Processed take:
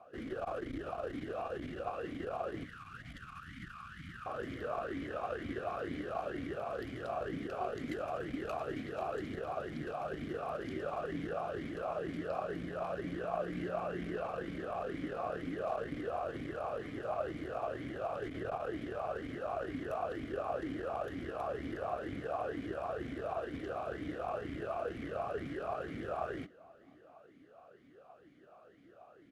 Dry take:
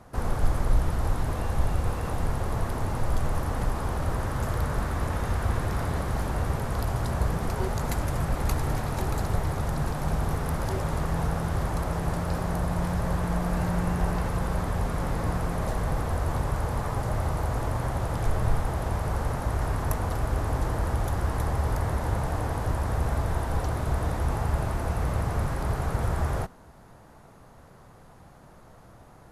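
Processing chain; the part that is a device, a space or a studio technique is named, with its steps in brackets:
0:02.65–0:04.26: Chebyshev band-stop filter 190–1,300 Hz, order 3
talk box (tube saturation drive 16 dB, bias 0.6; formant filter swept between two vowels a-i 2.1 Hz)
slap from a distant wall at 120 metres, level −30 dB
level +8 dB

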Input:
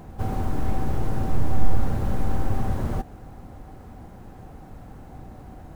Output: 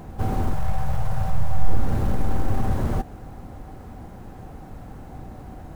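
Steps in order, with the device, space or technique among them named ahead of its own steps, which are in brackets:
parallel distortion (in parallel at −7.5 dB: hard clipping −20.5 dBFS, distortion −6 dB)
0:00.53–0:01.68: on the sum: Chebyshev band-stop filter 160–600 Hz, order 2

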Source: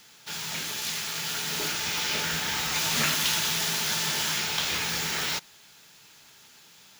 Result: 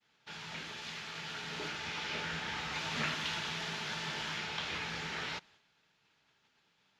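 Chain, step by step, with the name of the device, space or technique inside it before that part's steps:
hearing-loss simulation (low-pass filter 3,200 Hz 12 dB per octave; downward expander −51 dBFS)
level −7 dB

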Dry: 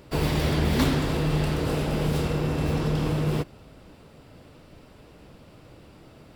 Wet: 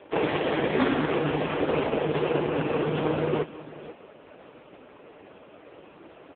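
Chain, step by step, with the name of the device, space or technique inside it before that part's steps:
satellite phone (band-pass filter 340–3,000 Hz; single-tap delay 488 ms −17 dB; level +9 dB; AMR narrowband 4.75 kbit/s 8,000 Hz)

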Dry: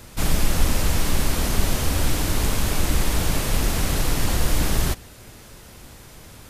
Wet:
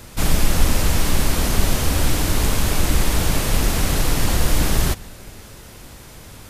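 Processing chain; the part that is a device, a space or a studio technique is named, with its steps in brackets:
compressed reverb return (on a send at −12.5 dB: convolution reverb RT60 1.0 s, pre-delay 116 ms + downward compressor, threshold −26 dBFS, peak gain reduction 15.5 dB)
on the sum: level +3 dB

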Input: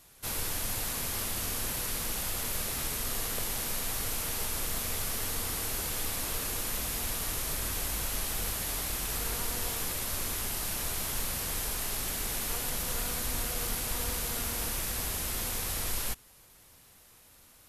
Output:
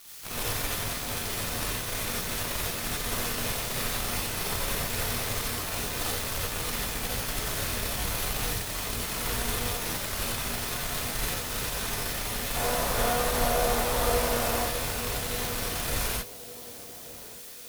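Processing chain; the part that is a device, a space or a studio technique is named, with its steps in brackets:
0:12.55–0:14.59: drawn EQ curve 270 Hz 0 dB, 650 Hz +12 dB, 2,500 Hz −1 dB
budget class-D amplifier (gap after every zero crossing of 0.11 ms; spike at every zero crossing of −33 dBFS)
feedback echo with a band-pass in the loop 1,171 ms, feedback 43%, band-pass 370 Hz, level −12 dB
reverb whose tail is shaped and stops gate 110 ms rising, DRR −4.5 dB

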